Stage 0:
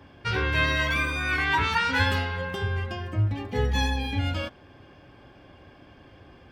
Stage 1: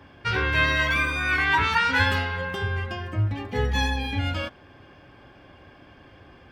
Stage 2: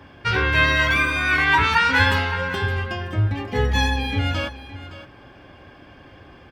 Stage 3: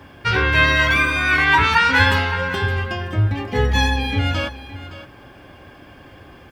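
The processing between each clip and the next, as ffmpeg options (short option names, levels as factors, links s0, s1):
-af "equalizer=f=1600:t=o:w=1.8:g=3.5"
-af "aecho=1:1:566:0.188,volume=1.58"
-af "acrusher=bits=10:mix=0:aa=0.000001,volume=1.33"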